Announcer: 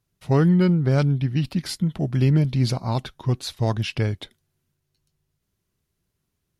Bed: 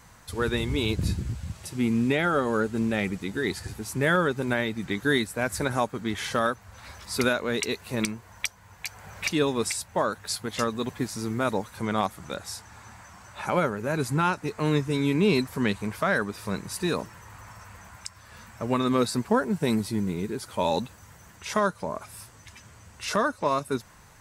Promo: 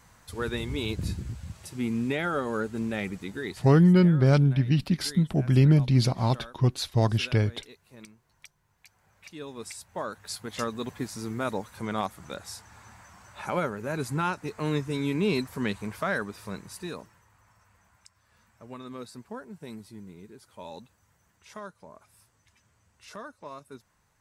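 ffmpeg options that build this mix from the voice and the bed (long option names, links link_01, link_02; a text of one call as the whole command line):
ffmpeg -i stem1.wav -i stem2.wav -filter_complex "[0:a]adelay=3350,volume=-0.5dB[link_01];[1:a]volume=12.5dB,afade=type=out:start_time=3.28:duration=0.6:silence=0.149624,afade=type=in:start_time=9.25:duration=1.41:silence=0.141254,afade=type=out:start_time=16.11:duration=1.19:silence=0.223872[link_02];[link_01][link_02]amix=inputs=2:normalize=0" out.wav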